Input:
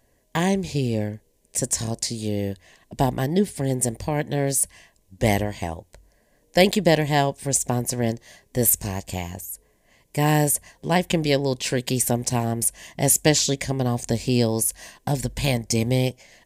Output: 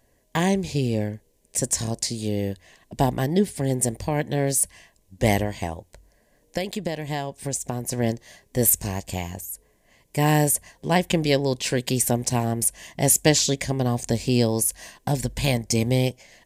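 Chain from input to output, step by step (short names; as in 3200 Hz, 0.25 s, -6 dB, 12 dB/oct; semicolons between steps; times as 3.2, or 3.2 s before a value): 5.66–7.92 compressor 10:1, threshold -24 dBFS, peak gain reduction 14 dB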